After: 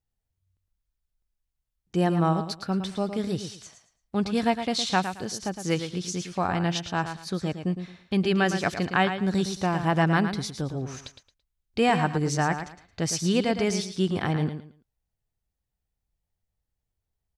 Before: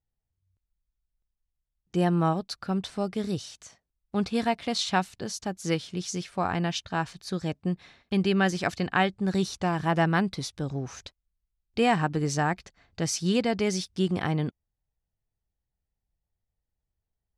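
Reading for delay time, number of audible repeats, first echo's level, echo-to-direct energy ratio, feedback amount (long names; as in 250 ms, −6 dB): 111 ms, 3, −9.0 dB, −8.5 dB, 24%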